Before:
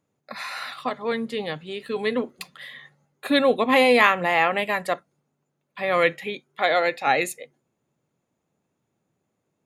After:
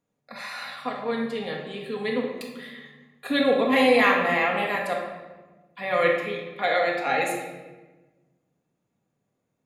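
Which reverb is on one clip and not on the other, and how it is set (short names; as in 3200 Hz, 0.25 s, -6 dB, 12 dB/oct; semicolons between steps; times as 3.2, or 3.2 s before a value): shoebox room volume 870 m³, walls mixed, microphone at 1.8 m; gain -6 dB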